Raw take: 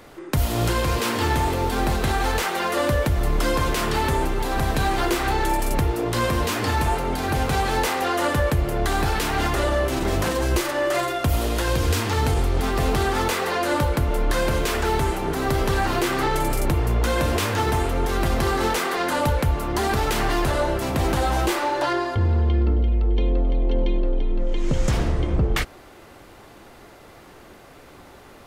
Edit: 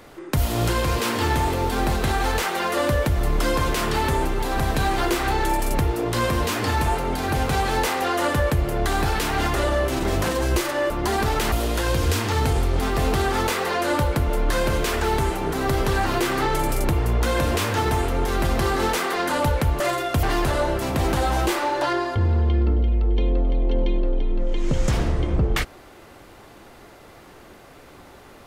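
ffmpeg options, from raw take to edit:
-filter_complex "[0:a]asplit=5[a][b][c][d][e];[a]atrim=end=10.902[f];[b]atrim=start=19.608:end=20.232[g];[c]atrim=start=11.328:end=19.612[h];[d]atrim=start=10.898:end=11.332[i];[e]atrim=start=20.228[j];[f][g]acrossfade=d=0.004:c1=hsin:c2=hsin[k];[k][h]acrossfade=d=0.004:c1=hsin:c2=hsin[l];[l][i]acrossfade=d=0.004:c1=hsin:c2=hsin[m];[m][j]acrossfade=d=0.004:c1=hsin:c2=hsin"

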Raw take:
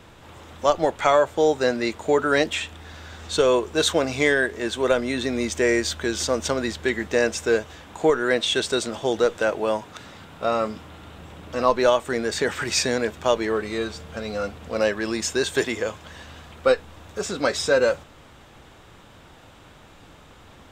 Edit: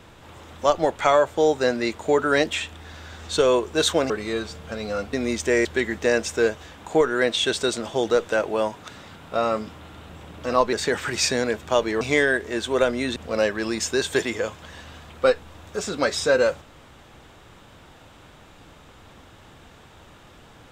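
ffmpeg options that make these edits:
-filter_complex "[0:a]asplit=7[a][b][c][d][e][f][g];[a]atrim=end=4.102[h];[b]atrim=start=13.548:end=14.582[i];[c]atrim=start=5.248:end=5.772[j];[d]atrim=start=6.738:end=11.822[k];[e]atrim=start=12.268:end=13.552[l];[f]atrim=start=4.098:end=5.252[m];[g]atrim=start=14.578[n];[h][i]acrossfade=d=0.004:c1=hsin:c2=hsin[o];[o][j]acrossfade=d=0.004:c1=hsin:c2=hsin[p];[p][k]acrossfade=d=0.004:c1=hsin:c2=hsin[q];[q][l]acrossfade=d=0.004:c1=hsin:c2=hsin[r];[r][m]acrossfade=d=0.004:c1=hsin:c2=hsin[s];[s][n]acrossfade=d=0.004:c1=hsin:c2=hsin"

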